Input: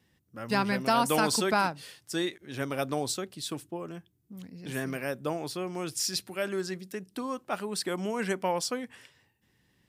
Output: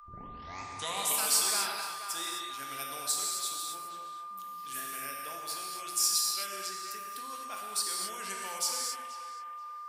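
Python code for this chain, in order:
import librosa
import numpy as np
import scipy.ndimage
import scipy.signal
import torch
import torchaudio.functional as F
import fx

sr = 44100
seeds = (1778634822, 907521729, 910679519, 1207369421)

p1 = fx.tape_start_head(x, sr, length_s=1.19)
p2 = p1 + 10.0 ** (-37.0 / 20.0) * np.sin(2.0 * np.pi * 1200.0 * np.arange(len(p1)) / sr)
p3 = scipy.signal.lfilter([1.0, -0.97], [1.0], p2)
p4 = p3 + fx.echo_banded(p3, sr, ms=480, feedback_pct=46, hz=1200.0, wet_db=-8.5, dry=0)
p5 = fx.rev_gated(p4, sr, seeds[0], gate_ms=290, shape='flat', drr_db=-1.5)
y = F.gain(torch.from_numpy(p5), 2.5).numpy()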